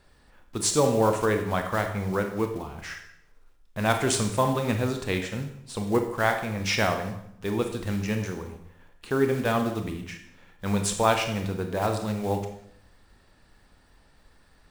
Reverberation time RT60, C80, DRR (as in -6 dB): 0.70 s, 10.5 dB, 5.0 dB